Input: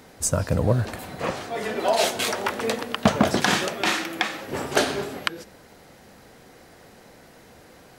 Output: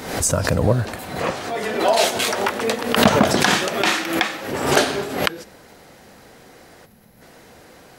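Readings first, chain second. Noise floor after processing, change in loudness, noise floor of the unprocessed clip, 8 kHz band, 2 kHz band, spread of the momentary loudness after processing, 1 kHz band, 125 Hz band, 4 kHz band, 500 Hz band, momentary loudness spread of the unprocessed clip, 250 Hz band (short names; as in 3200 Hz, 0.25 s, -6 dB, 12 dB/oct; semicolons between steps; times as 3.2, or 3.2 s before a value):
-47 dBFS, +5.0 dB, -50 dBFS, +5.0 dB, +5.0 dB, 9 LU, +5.0 dB, +3.0 dB, +5.0 dB, +5.0 dB, 9 LU, +4.5 dB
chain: low shelf 210 Hz -3 dB; spectral gain 6.86–7.21, 250–10000 Hz -11 dB; backwards sustainer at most 70 dB/s; gain +4 dB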